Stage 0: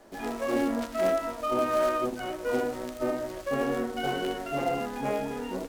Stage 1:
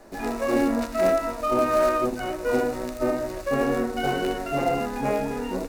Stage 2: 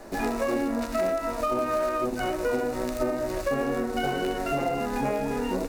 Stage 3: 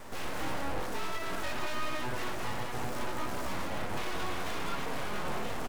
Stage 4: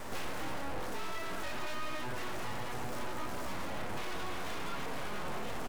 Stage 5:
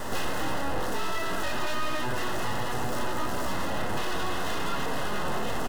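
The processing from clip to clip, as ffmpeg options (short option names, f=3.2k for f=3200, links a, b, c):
-af "lowshelf=f=80:g=7,bandreject=f=3.2k:w=6.7,volume=4.5dB"
-af "acompressor=threshold=-29dB:ratio=6,volume=5dB"
-filter_complex "[0:a]asoftclip=type=tanh:threshold=-30dB,asplit=2[a][b];[b]aecho=0:1:61.22|201.2:0.355|0.562[c];[a][c]amix=inputs=2:normalize=0,aeval=exprs='abs(val(0))':c=same"
-af "alimiter=level_in=9dB:limit=-24dB:level=0:latency=1,volume=-9dB,volume=4dB"
-af "asuperstop=centerf=2300:order=8:qfactor=7.2,volume=9dB"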